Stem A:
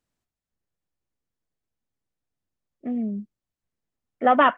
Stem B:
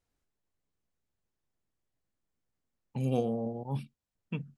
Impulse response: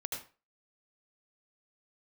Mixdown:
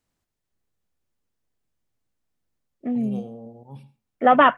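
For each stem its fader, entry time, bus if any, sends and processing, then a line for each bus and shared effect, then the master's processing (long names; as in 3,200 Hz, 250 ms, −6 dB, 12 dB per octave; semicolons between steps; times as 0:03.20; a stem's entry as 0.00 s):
+2.5 dB, 0.00 s, no send, no processing
−1.0 dB, 0.00 s, send −19.5 dB, automatic ducking −8 dB, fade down 0.30 s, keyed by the first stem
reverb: on, RT60 0.35 s, pre-delay 72 ms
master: no processing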